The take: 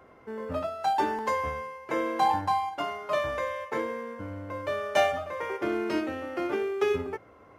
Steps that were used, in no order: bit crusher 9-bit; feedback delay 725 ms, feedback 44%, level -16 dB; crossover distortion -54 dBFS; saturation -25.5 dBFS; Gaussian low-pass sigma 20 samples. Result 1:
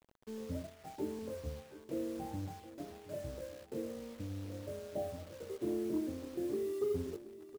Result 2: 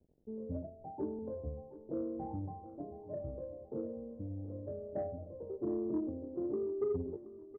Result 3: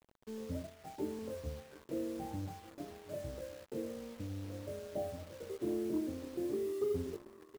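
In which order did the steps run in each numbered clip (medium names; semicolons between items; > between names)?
Gaussian low-pass > saturation > bit crusher > crossover distortion > feedback delay; crossover distortion > bit crusher > Gaussian low-pass > saturation > feedback delay; Gaussian low-pass > saturation > bit crusher > feedback delay > crossover distortion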